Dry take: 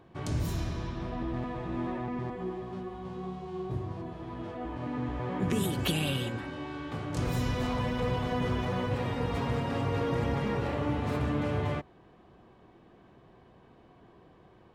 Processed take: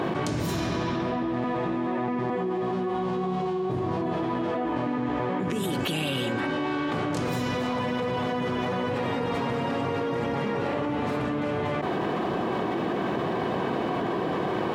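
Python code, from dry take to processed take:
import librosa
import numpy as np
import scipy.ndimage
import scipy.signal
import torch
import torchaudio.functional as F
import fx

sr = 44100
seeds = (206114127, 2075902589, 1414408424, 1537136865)

y = scipy.signal.sosfilt(scipy.signal.butter(2, 190.0, 'highpass', fs=sr, output='sos'), x)
y = fx.high_shelf(y, sr, hz=5700.0, db=-6.0)
y = fx.env_flatten(y, sr, amount_pct=100)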